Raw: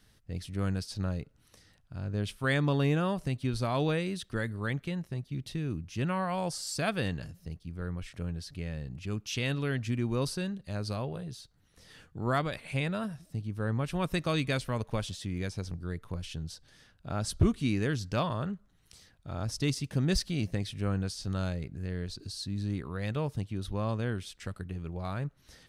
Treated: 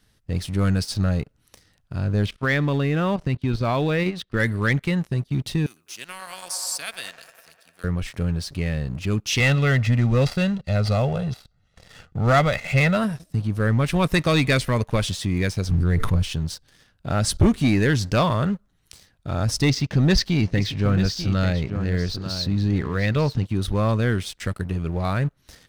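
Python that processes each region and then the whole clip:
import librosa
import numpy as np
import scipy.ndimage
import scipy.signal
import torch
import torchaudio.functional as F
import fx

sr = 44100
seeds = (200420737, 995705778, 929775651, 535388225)

y = fx.chain(x, sr, fx.lowpass(hz=4100.0, slope=12),
    fx.level_steps(step_db=11), at=(2.26, 4.4))
y = fx.chain(y, sr, fx.differentiator(),
    fx.echo_wet_bandpass(ms=101, feedback_pct=75, hz=880.0, wet_db=-7.0),
    fx.band_squash(depth_pct=40), at=(5.66, 7.84))
y = fx.chain(y, sr, fx.dead_time(dead_ms=0.068),
    fx.lowpass(hz=5600.0, slope=12),
    fx.comb(ms=1.5, depth=0.65), at=(9.4, 12.97))
y = fx.chain(y, sr, fx.low_shelf(hz=280.0, db=7.0),
    fx.sustainer(db_per_s=30.0), at=(15.69, 16.23))
y = fx.chain(y, sr, fx.lowpass(hz=5900.0, slope=24),
    fx.echo_single(ms=892, db=-11.5), at=(19.68, 23.45))
y = fx.dynamic_eq(y, sr, hz=2000.0, q=3.7, threshold_db=-54.0, ratio=4.0, max_db=6)
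y = fx.leveller(y, sr, passes=2)
y = y * librosa.db_to_amplitude(4.5)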